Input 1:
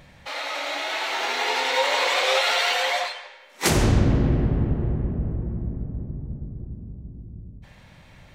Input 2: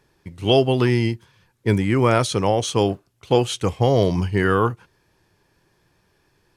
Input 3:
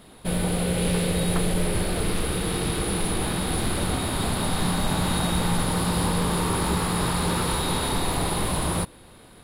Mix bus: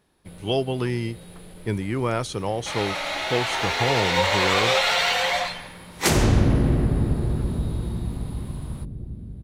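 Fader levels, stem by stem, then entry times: +0.5 dB, -7.5 dB, -20.0 dB; 2.40 s, 0.00 s, 0.00 s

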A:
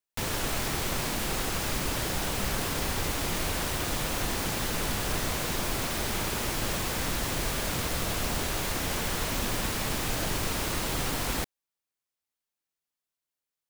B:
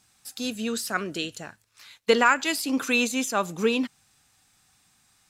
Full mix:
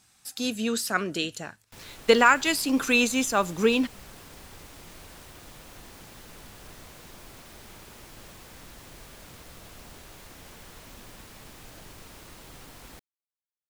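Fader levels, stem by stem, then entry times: -17.0 dB, +1.5 dB; 1.55 s, 0.00 s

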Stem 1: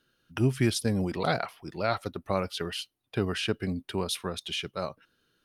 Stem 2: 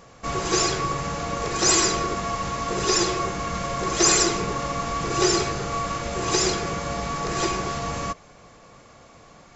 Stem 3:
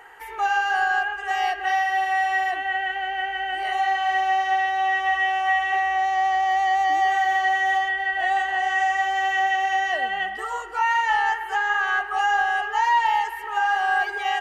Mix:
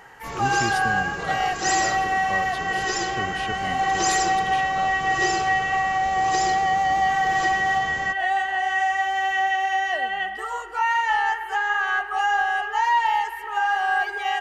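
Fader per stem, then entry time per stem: -5.5 dB, -7.5 dB, -0.5 dB; 0.00 s, 0.00 s, 0.00 s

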